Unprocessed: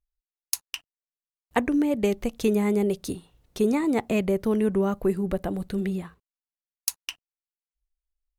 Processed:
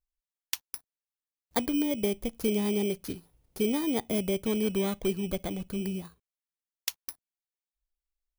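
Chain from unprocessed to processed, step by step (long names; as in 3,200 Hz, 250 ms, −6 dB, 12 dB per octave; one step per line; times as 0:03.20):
samples in bit-reversed order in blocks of 16 samples
level −5 dB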